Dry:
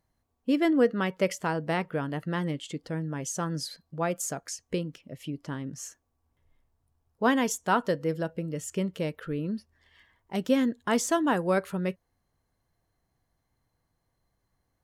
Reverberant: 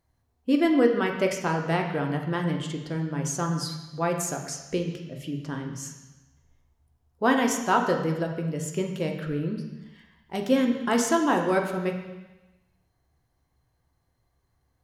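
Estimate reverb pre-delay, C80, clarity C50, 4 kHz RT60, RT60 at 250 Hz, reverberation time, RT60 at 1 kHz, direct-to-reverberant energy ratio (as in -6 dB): 3 ms, 8.0 dB, 6.5 dB, 1.1 s, 1.0 s, 1.1 s, 1.1 s, 2.5 dB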